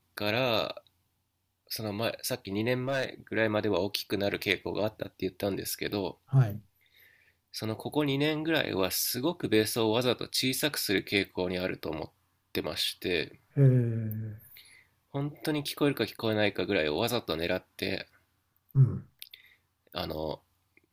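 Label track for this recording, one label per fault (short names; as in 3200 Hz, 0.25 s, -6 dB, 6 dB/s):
2.880000	3.050000	clipped -24 dBFS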